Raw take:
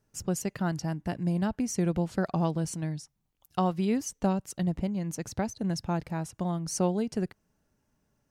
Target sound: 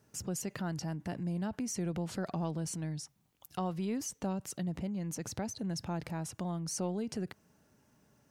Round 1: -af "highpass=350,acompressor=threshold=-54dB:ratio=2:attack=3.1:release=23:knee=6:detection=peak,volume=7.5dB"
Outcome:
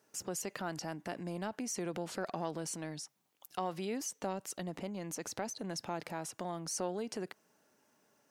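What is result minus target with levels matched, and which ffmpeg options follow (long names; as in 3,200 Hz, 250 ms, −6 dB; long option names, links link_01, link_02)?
125 Hz band −6.5 dB
-af "highpass=91,acompressor=threshold=-54dB:ratio=2:attack=3.1:release=23:knee=6:detection=peak,volume=7.5dB"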